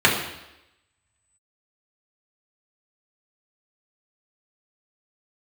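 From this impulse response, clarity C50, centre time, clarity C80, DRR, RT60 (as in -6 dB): 5.5 dB, 36 ms, 8.0 dB, -4.5 dB, 0.90 s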